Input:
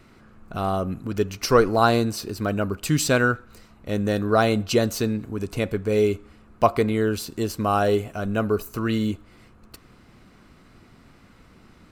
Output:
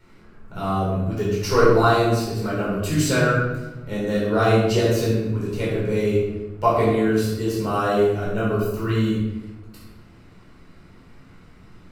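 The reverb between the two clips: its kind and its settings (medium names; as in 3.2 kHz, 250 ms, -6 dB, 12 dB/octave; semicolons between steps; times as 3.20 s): simulated room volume 520 m³, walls mixed, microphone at 4.5 m; trim -9.5 dB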